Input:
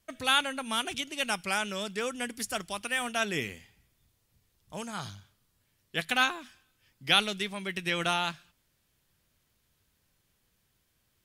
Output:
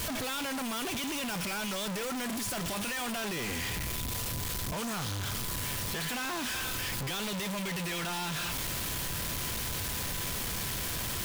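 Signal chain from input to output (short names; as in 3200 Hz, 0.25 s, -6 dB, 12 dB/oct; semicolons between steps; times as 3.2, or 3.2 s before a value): infinite clipping; whine 1000 Hz -50 dBFS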